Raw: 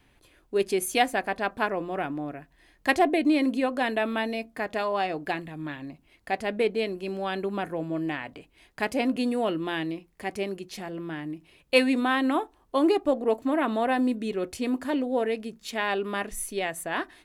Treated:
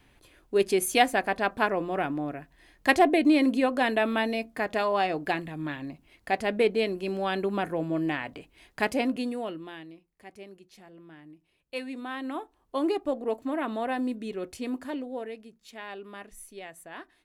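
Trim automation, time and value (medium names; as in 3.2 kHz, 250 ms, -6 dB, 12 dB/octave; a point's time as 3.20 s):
8.86 s +1.5 dB
9.55 s -9 dB
9.87 s -15 dB
11.76 s -15 dB
12.76 s -5 dB
14.76 s -5 dB
15.49 s -13 dB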